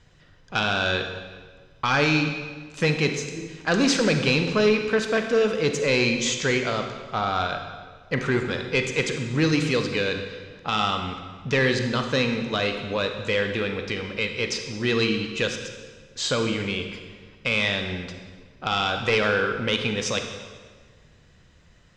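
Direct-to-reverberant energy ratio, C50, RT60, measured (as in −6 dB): 5.0 dB, 6.0 dB, 1.5 s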